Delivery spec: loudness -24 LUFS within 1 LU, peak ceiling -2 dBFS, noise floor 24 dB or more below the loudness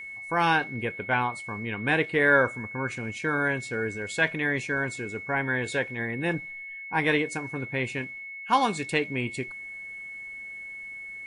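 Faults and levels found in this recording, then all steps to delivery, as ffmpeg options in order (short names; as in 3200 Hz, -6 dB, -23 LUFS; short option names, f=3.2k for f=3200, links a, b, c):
steady tone 2200 Hz; tone level -37 dBFS; loudness -28.0 LUFS; peak -8.5 dBFS; loudness target -24.0 LUFS
-> -af "bandreject=f=2.2k:w=30"
-af "volume=4dB"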